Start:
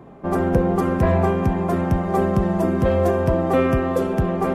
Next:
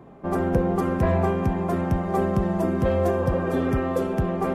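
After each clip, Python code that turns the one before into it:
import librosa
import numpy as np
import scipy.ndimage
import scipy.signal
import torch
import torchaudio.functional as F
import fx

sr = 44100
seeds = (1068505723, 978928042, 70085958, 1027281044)

y = fx.spec_repair(x, sr, seeds[0], start_s=3.23, length_s=0.53, low_hz=290.0, high_hz=3100.0, source='both')
y = y * librosa.db_to_amplitude(-3.5)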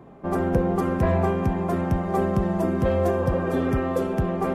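y = x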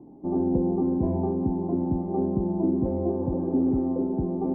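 y = fx.formant_cascade(x, sr, vowel='u')
y = y * librosa.db_to_amplitude(7.5)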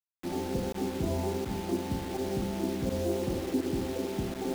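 y = fx.rev_schroeder(x, sr, rt60_s=0.54, comb_ms=32, drr_db=1.5)
y = fx.volume_shaper(y, sr, bpm=83, per_beat=1, depth_db=-16, release_ms=62.0, shape='fast start')
y = fx.quant_dither(y, sr, seeds[1], bits=6, dither='none')
y = y * librosa.db_to_amplitude(-5.5)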